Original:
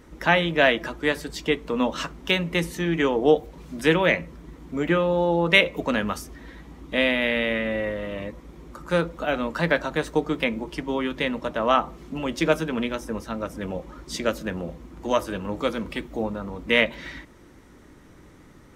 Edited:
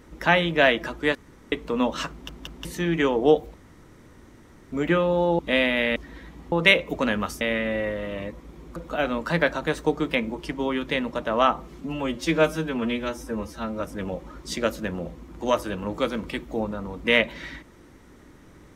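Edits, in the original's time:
1.15–1.52 room tone
2.11 stutter in place 0.18 s, 3 plays
3.54–4.72 room tone
5.39–6.28 swap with 6.84–7.41
8.76–9.05 cut
12.1–13.43 stretch 1.5×

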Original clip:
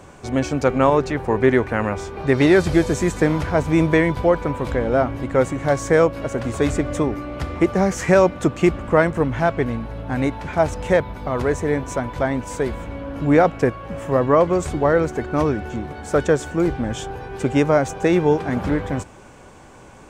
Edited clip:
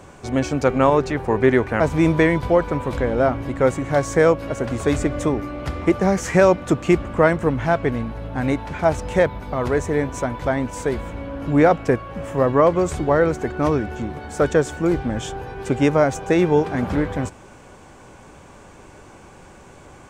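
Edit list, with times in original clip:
1.8–3.54 cut

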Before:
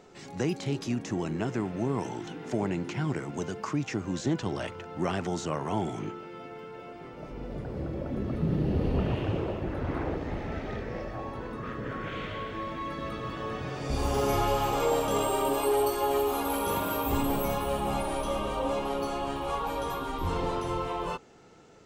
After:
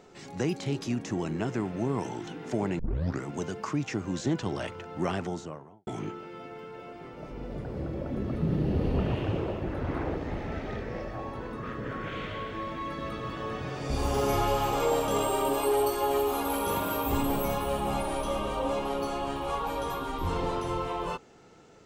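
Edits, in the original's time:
2.79 tape start 0.44 s
5.05–5.87 studio fade out

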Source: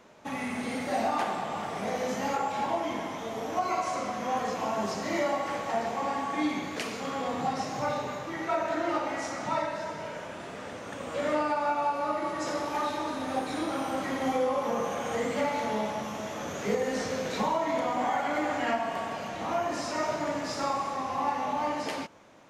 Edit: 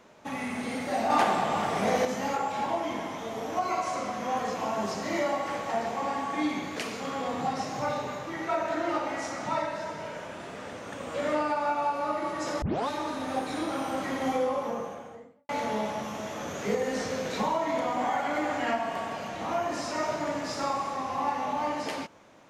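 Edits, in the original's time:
1.1–2.05 gain +6 dB
12.62 tape start 0.26 s
14.33–15.49 studio fade out

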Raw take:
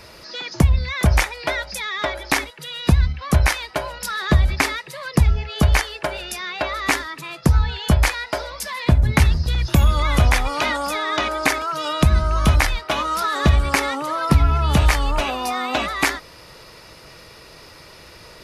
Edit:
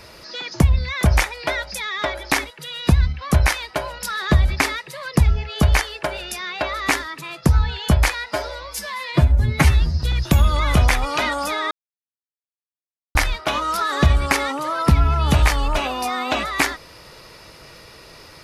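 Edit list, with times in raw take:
8.31–9.45 stretch 1.5×
11.14–12.58 mute

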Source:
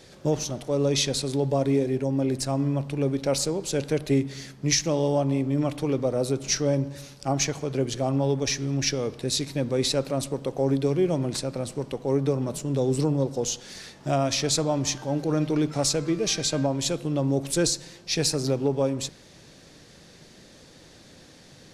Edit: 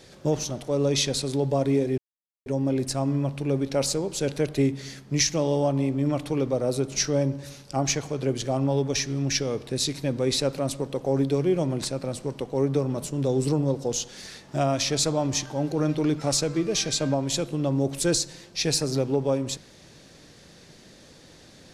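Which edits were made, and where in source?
1.98 insert silence 0.48 s

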